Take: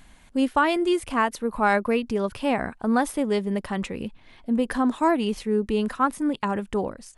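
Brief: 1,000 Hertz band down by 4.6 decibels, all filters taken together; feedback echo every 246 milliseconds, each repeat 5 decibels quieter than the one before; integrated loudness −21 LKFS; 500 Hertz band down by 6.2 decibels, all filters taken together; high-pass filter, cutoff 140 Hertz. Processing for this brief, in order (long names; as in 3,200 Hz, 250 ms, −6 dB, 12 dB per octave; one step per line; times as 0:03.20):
high-pass filter 140 Hz
parametric band 500 Hz −7.5 dB
parametric band 1,000 Hz −3.5 dB
repeating echo 246 ms, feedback 56%, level −5 dB
level +5.5 dB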